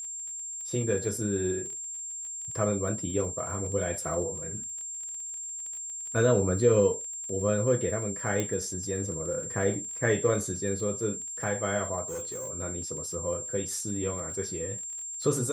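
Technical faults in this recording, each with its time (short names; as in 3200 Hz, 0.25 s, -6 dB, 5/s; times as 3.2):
crackle 20/s -38 dBFS
tone 7400 Hz -35 dBFS
8.4 pop -15 dBFS
12.05–12.51 clipped -32 dBFS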